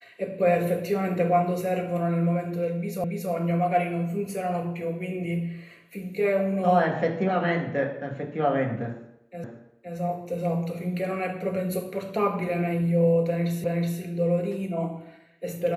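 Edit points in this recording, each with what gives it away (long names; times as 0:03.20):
0:03.04: the same again, the last 0.28 s
0:09.44: the same again, the last 0.52 s
0:13.64: the same again, the last 0.37 s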